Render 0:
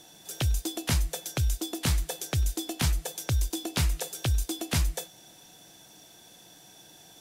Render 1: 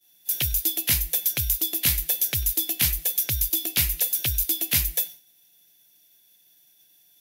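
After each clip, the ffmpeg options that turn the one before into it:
-af "highshelf=f=1600:t=q:w=1.5:g=9,aexciter=amount=6.9:drive=5.3:freq=11000,agate=range=0.0224:threshold=0.0501:ratio=3:detection=peak,volume=0.596"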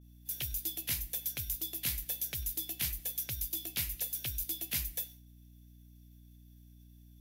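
-af "flanger=delay=4.7:depth=3.1:regen=-79:speed=1.7:shape=triangular,aeval=exprs='val(0)+0.00447*(sin(2*PI*60*n/s)+sin(2*PI*2*60*n/s)/2+sin(2*PI*3*60*n/s)/3+sin(2*PI*4*60*n/s)/4+sin(2*PI*5*60*n/s)/5)':c=same,volume=0.398"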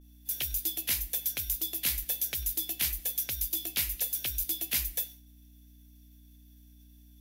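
-af "equalizer=f=120:t=o:w=1.1:g=-13,volume=1.78"

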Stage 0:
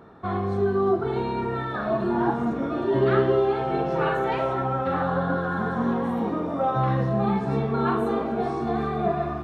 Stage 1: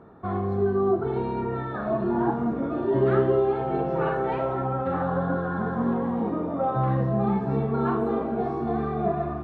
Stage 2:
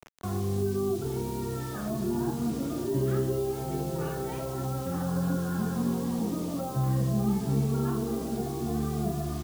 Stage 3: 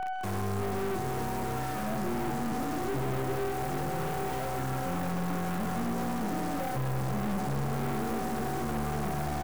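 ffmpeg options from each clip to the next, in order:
-af "lowpass=f=1100:p=1"
-filter_complex "[0:a]asplit=2[s0][s1];[s1]adelay=28,volume=0.251[s2];[s0][s2]amix=inputs=2:normalize=0,acrusher=bits=6:mix=0:aa=0.000001,acrossover=split=290|3000[s3][s4][s5];[s4]acompressor=threshold=0.00708:ratio=2.5[s6];[s3][s6][s5]amix=inputs=3:normalize=0"
-filter_complex "[0:a]aeval=exprs='val(0)+0.0251*sin(2*PI*750*n/s)':c=same,aeval=exprs='(tanh(56.2*val(0)+0.6)-tanh(0.6))/56.2':c=same,asplit=2[s0][s1];[s1]adelay=130,highpass=300,lowpass=3400,asoftclip=type=hard:threshold=0.0106,volume=0.355[s2];[s0][s2]amix=inputs=2:normalize=0,volume=1.88"

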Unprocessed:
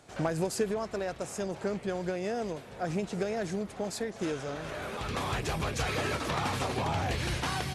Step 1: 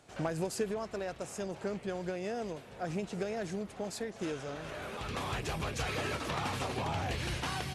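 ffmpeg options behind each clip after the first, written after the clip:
-af "equalizer=f=2800:w=4.1:g=2.5,volume=0.631"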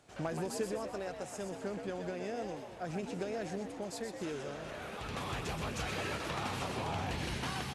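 -filter_complex "[0:a]asplit=7[s0][s1][s2][s3][s4][s5][s6];[s1]adelay=125,afreqshift=75,volume=0.447[s7];[s2]adelay=250,afreqshift=150,volume=0.219[s8];[s3]adelay=375,afreqshift=225,volume=0.107[s9];[s4]adelay=500,afreqshift=300,volume=0.0525[s10];[s5]adelay=625,afreqshift=375,volume=0.0257[s11];[s6]adelay=750,afreqshift=450,volume=0.0126[s12];[s0][s7][s8][s9][s10][s11][s12]amix=inputs=7:normalize=0,volume=0.708"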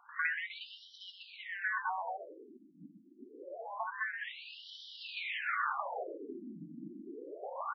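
-af "highshelf=f=4600:g=-9.5,aeval=exprs='val(0)*sin(2*PI*1300*n/s)':c=same,afftfilt=real='re*between(b*sr/1024,230*pow(4200/230,0.5+0.5*sin(2*PI*0.26*pts/sr))/1.41,230*pow(4200/230,0.5+0.5*sin(2*PI*0.26*pts/sr))*1.41)':imag='im*between(b*sr/1024,230*pow(4200/230,0.5+0.5*sin(2*PI*0.26*pts/sr))/1.41,230*pow(4200/230,0.5+0.5*sin(2*PI*0.26*pts/sr))*1.41)':win_size=1024:overlap=0.75,volume=2.99"

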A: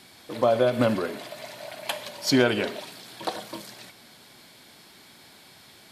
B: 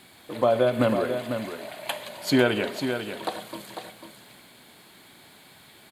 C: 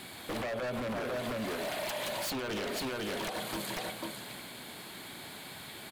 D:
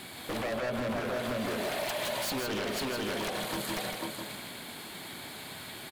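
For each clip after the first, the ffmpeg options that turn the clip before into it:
-af "equalizer=f=5500:w=3.9:g=-14.5,acrusher=bits=10:mix=0:aa=0.000001,aecho=1:1:497:0.398"
-af "alimiter=limit=0.119:level=0:latency=1:release=108,acompressor=threshold=0.02:ratio=10,aeval=exprs='0.0158*(abs(mod(val(0)/0.0158+3,4)-2)-1)':c=same,volume=2"
-af "aecho=1:1:159:0.531,volume=1.19"

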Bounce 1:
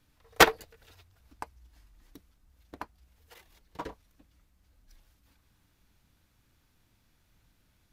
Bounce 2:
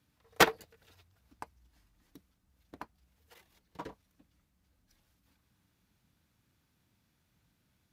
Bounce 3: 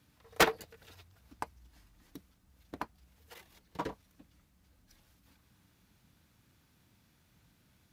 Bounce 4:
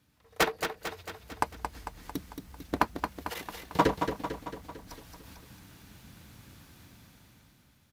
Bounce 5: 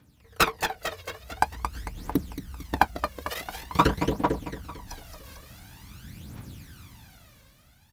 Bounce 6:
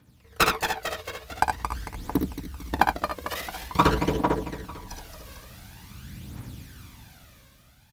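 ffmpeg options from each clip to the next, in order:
-af "highpass=67,equalizer=f=180:w=1.4:g=4.5,volume=0.562"
-af "alimiter=limit=0.211:level=0:latency=1:release=304,asoftclip=type=tanh:threshold=0.075,volume=2.11"
-filter_complex "[0:a]dynaudnorm=f=260:g=9:m=6.31,asplit=2[s0][s1];[s1]aecho=0:1:224|448|672|896|1120|1344|1568:0.447|0.255|0.145|0.0827|0.0472|0.0269|0.0153[s2];[s0][s2]amix=inputs=2:normalize=0,volume=0.794"
-af "aphaser=in_gain=1:out_gain=1:delay=1.9:decay=0.65:speed=0.47:type=triangular,volume=1.41"
-af "aecho=1:1:57|73:0.355|0.562"

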